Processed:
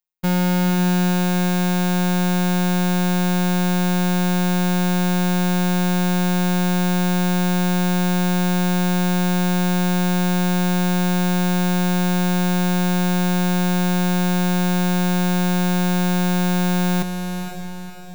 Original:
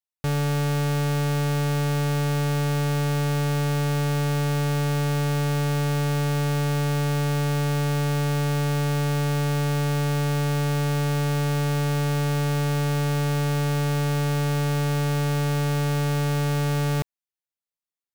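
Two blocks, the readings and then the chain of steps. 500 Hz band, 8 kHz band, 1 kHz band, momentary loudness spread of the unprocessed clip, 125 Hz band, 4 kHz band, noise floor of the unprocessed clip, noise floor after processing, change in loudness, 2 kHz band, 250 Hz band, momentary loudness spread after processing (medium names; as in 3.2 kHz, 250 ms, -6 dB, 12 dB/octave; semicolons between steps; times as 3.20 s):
+2.0 dB, +6.0 dB, +5.5 dB, 0 LU, no reading, +5.5 dB, under -85 dBFS, -28 dBFS, +4.5 dB, +5.0 dB, +10.0 dB, 0 LU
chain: robot voice 180 Hz; echo that smears into a reverb 503 ms, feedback 46%, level -7 dB; trim +7.5 dB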